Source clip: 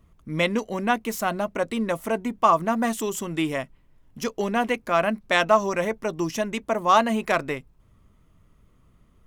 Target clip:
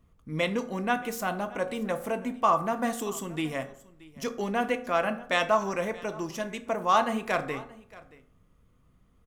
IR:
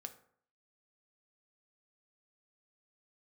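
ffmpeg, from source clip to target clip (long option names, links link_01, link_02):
-filter_complex "[0:a]asettb=1/sr,asplit=3[link_01][link_02][link_03];[link_01]atrim=end=6.114[link_04];[link_02]atrim=start=6.11:end=6.62,asetpts=PTS-STARTPTS,afade=type=in:duration=0.004:curve=qsin,afade=type=out:start_time=0.506:duration=0.004:curve=qsin,aeval=exprs='0.237*(cos(1*acos(clip(val(0)/0.237,-1,1)))-cos(1*PI/2))+0.0211*(cos(3*acos(clip(val(0)/0.237,-1,1)))-cos(3*PI/2))':channel_layout=same[link_05];[link_03]atrim=start=6.616[link_06];[link_04][link_05]acrossfade=duration=0.004:curve1=hsin:curve2=qsin[link_07];[link_07][link_06]acrossfade=duration=0.004:curve1=qsin:curve2=hsin,aecho=1:1:627:0.0891[link_08];[1:a]atrim=start_sample=2205[link_09];[link_08][link_09]afir=irnorm=-1:irlink=0"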